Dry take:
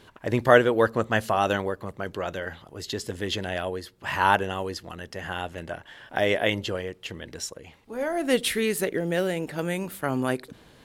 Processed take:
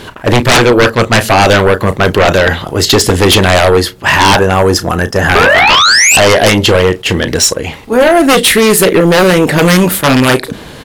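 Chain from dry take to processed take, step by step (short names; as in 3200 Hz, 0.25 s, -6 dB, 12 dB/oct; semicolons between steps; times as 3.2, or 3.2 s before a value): rattling part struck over -27 dBFS, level -23 dBFS; spectral gain 4.34–5.42, 1800–4900 Hz -8 dB; vocal rider within 4 dB 0.5 s; painted sound rise, 5.35–6.17, 390–2800 Hz -19 dBFS; doubler 33 ms -13 dB; sine folder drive 17 dB, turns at -5 dBFS; attack slew limiter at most 440 dB/s; gain +2.5 dB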